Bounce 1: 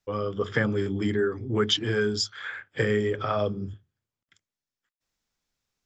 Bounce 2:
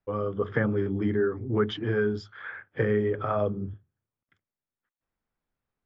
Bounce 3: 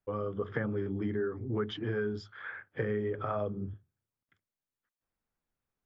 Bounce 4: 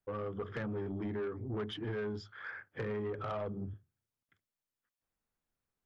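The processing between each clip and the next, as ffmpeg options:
-af "lowpass=1600"
-af "acompressor=threshold=0.0355:ratio=2,volume=0.708"
-af "asoftclip=type=tanh:threshold=0.0299,volume=0.841"

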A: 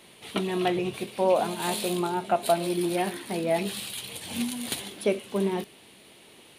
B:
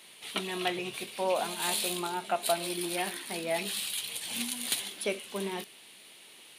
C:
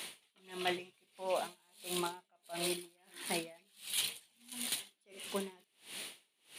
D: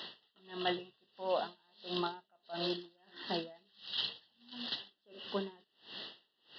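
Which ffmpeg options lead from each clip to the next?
-af "highpass=120,tiltshelf=f=970:g=-6.5,volume=0.631"
-af "areverse,acompressor=threshold=0.01:ratio=12,areverse,aeval=exprs='val(0)*pow(10,-37*(0.5-0.5*cos(2*PI*1.5*n/s))/20)':c=same,volume=3.16"
-af "asuperstop=centerf=2300:order=12:qfactor=3.3,aresample=11025,aresample=44100,volume=1.19"

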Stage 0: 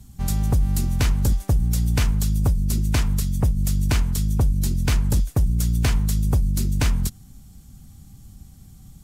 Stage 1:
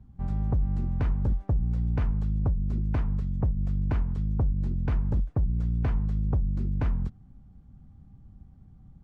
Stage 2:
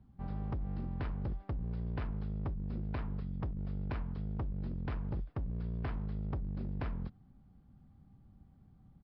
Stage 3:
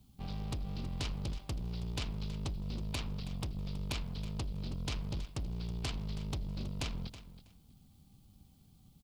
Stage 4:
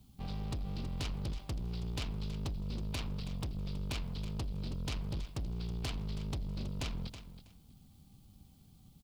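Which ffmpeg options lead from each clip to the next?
-af "lowpass=1200,volume=0.501"
-af "lowshelf=f=130:g=-10,aresample=11025,asoftclip=type=hard:threshold=0.0335,aresample=44100,volume=0.708"
-af "aeval=exprs='0.0266*(cos(1*acos(clip(val(0)/0.0266,-1,1)))-cos(1*PI/2))+0.00237*(cos(6*acos(clip(val(0)/0.0266,-1,1)))-cos(6*PI/2))':c=same,aecho=1:1:323|646:0.2|0.0359,aexciter=amount=12.3:drive=2.5:freq=2600,volume=0.841"
-af "asoftclip=type=tanh:threshold=0.0224,volume=1.26"

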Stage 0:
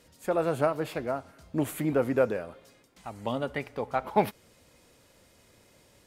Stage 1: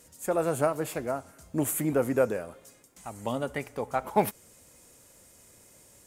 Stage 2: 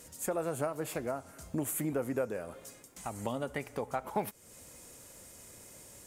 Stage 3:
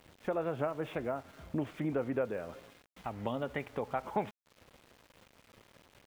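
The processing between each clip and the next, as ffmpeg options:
-af "highshelf=f=5600:t=q:w=1.5:g=9"
-af "acompressor=threshold=0.0112:ratio=2.5,volume=1.5"
-af "aresample=8000,aresample=44100,aeval=exprs='val(0)*gte(abs(val(0)),0.00211)':c=same"

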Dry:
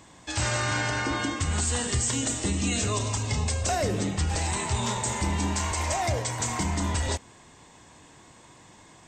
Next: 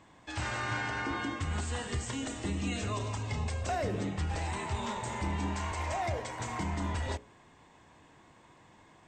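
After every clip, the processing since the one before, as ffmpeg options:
-af "bass=f=250:g=-1,treble=f=4000:g=-12,bandreject=f=60:t=h:w=6,bandreject=f=120:t=h:w=6,bandreject=f=180:t=h:w=6,bandreject=f=240:t=h:w=6,bandreject=f=300:t=h:w=6,bandreject=f=360:t=h:w=6,bandreject=f=420:t=h:w=6,bandreject=f=480:t=h:w=6,bandreject=f=540:t=h:w=6,bandreject=f=600:t=h:w=6,volume=0.562"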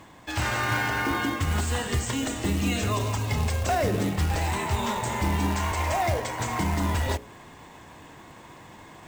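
-af "areverse,acompressor=mode=upward:threshold=0.00398:ratio=2.5,areverse,acrusher=bits=4:mode=log:mix=0:aa=0.000001,volume=2.51"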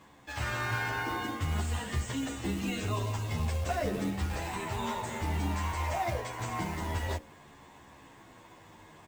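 -filter_complex "[0:a]acrossover=split=3700[s0][s1];[s1]asoftclip=type=tanh:threshold=0.0168[s2];[s0][s2]amix=inputs=2:normalize=0,asplit=2[s3][s4];[s4]adelay=11.1,afreqshift=-0.53[s5];[s3][s5]amix=inputs=2:normalize=1,volume=0.631"

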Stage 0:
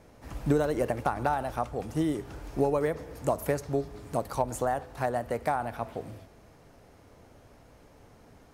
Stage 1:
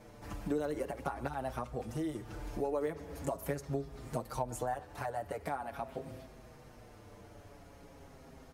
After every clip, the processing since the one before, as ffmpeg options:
-filter_complex "[0:a]acompressor=threshold=0.00891:ratio=2,asplit=2[s0][s1];[s1]adelay=6.3,afreqshift=-0.43[s2];[s0][s2]amix=inputs=2:normalize=1,volume=1.58"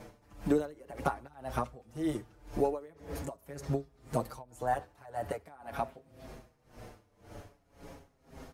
-af "aeval=exprs='val(0)*pow(10,-24*(0.5-0.5*cos(2*PI*1.9*n/s))/20)':c=same,volume=2.24"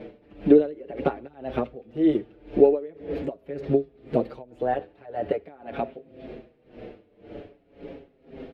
-af "firequalizer=gain_entry='entry(110,0);entry(200,9);entry(400,15);entry(990,-4);entry(1600,2);entry(2600,8);entry(3700,3);entry(6100,-19);entry(9400,-24)':delay=0.05:min_phase=1"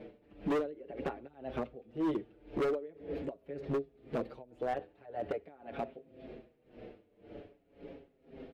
-af "asoftclip=type=hard:threshold=0.106,volume=0.376"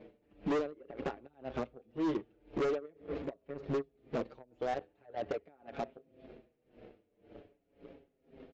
-af "aeval=exprs='0.0422*(cos(1*acos(clip(val(0)/0.0422,-1,1)))-cos(1*PI/2))+0.00335*(cos(7*acos(clip(val(0)/0.0422,-1,1)))-cos(7*PI/2))':c=same,aresample=16000,aresample=44100"

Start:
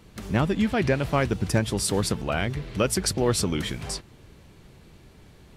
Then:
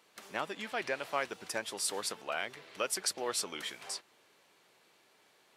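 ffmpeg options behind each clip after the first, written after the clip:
-af "highpass=630,volume=0.473"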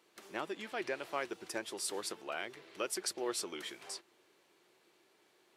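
-af "equalizer=f=350:w=3.6:g=11,volume=0.596"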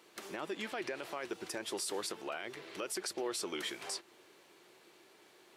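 -filter_complex "[0:a]asplit=2[s0][s1];[s1]acompressor=threshold=0.00447:ratio=6,volume=0.891[s2];[s0][s2]amix=inputs=2:normalize=0,alimiter=level_in=2.11:limit=0.0631:level=0:latency=1:release=39,volume=0.473,volume=1.26"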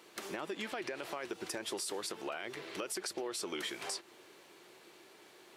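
-af "acompressor=threshold=0.0112:ratio=6,volume=1.5"

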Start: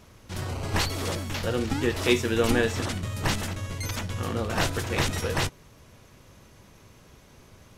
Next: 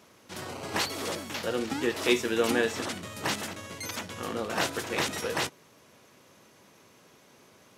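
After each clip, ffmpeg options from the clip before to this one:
-af "highpass=230,volume=0.841"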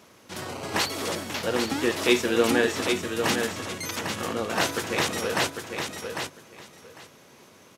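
-af "aecho=1:1:800|1600|2400:0.501|0.0852|0.0145,volume=1.5"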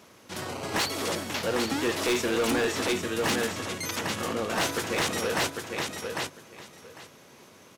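-af "asoftclip=type=hard:threshold=0.0794"

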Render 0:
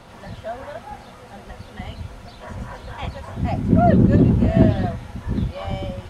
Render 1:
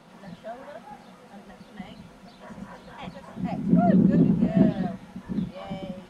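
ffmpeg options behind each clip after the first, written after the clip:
-af "lowshelf=f=130:t=q:w=3:g=-10,volume=0.398"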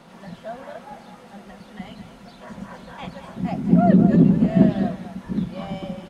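-af "aecho=1:1:211:0.282,volume=1.58"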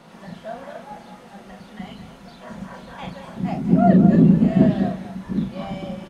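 -filter_complex "[0:a]asplit=2[s0][s1];[s1]adelay=37,volume=0.531[s2];[s0][s2]amix=inputs=2:normalize=0"

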